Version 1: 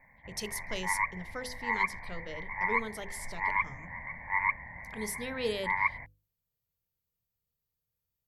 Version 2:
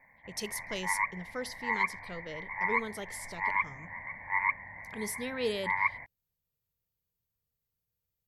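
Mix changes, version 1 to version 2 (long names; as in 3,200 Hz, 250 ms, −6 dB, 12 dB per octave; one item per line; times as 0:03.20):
background: add low-shelf EQ 170 Hz −11.5 dB
master: remove mains-hum notches 50/100/150/200/250/300/350/400/450/500 Hz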